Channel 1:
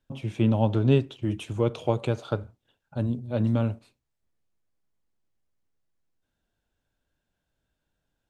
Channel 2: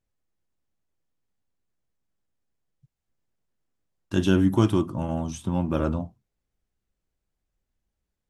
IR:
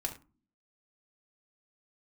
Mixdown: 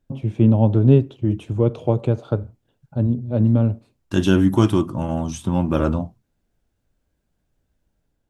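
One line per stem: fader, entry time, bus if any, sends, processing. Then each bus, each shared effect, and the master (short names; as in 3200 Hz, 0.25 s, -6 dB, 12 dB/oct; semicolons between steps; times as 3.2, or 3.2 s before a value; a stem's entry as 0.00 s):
+1.0 dB, 0.00 s, no send, tilt shelf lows +7.5 dB, about 890 Hz
+1.0 dB, 0.00 s, no send, AGC gain up to 4.5 dB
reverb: off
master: dry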